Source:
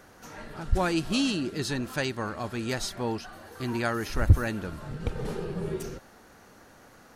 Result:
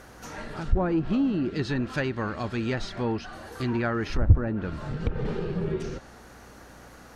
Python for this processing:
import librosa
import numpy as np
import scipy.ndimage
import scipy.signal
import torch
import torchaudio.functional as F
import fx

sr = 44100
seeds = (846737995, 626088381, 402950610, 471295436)

p1 = fx.dynamic_eq(x, sr, hz=800.0, q=0.72, threshold_db=-41.0, ratio=4.0, max_db=-4)
p2 = fx.add_hum(p1, sr, base_hz=60, snr_db=29)
p3 = np.clip(10.0 ** (25.5 / 20.0) * p2, -1.0, 1.0) / 10.0 ** (25.5 / 20.0)
p4 = p2 + (p3 * librosa.db_to_amplitude(-3.0))
y = fx.env_lowpass_down(p4, sr, base_hz=950.0, full_db=-19.5)